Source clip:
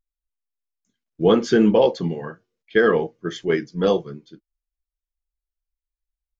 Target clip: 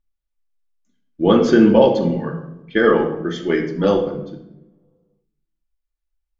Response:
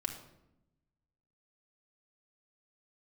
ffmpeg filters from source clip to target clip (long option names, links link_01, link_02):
-filter_complex "[0:a]highshelf=frequency=5600:gain=-8.5[link_01];[1:a]atrim=start_sample=2205[link_02];[link_01][link_02]afir=irnorm=-1:irlink=0,volume=3dB"